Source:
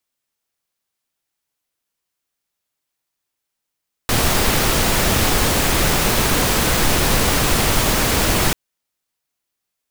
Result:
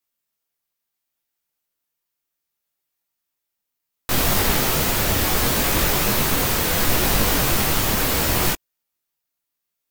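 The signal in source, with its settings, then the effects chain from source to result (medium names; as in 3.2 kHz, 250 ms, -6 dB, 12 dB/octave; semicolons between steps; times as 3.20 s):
noise pink, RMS -16.5 dBFS 4.44 s
peaking EQ 15 kHz +12.5 dB 0.22 oct; detune thickener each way 24 cents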